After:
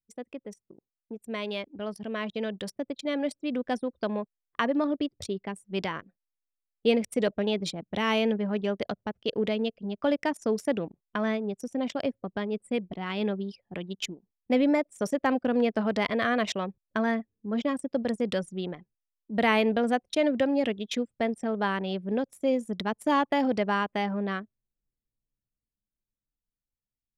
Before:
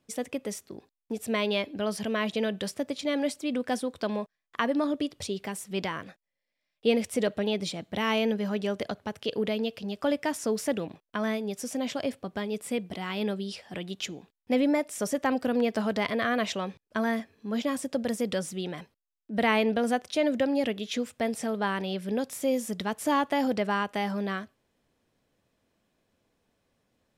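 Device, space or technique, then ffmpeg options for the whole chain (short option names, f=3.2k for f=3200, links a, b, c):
voice memo with heavy noise removal: -af "anlmdn=6.31,dynaudnorm=f=790:g=7:m=8dB,volume=-6.5dB"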